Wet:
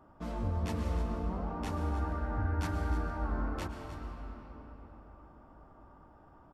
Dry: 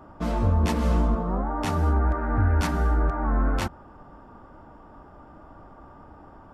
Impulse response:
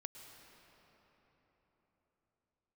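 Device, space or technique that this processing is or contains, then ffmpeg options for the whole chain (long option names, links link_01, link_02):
cave: -filter_complex "[0:a]aecho=1:1:307:0.224[link_01];[1:a]atrim=start_sample=2205[link_02];[link_01][link_02]afir=irnorm=-1:irlink=0,volume=-6.5dB"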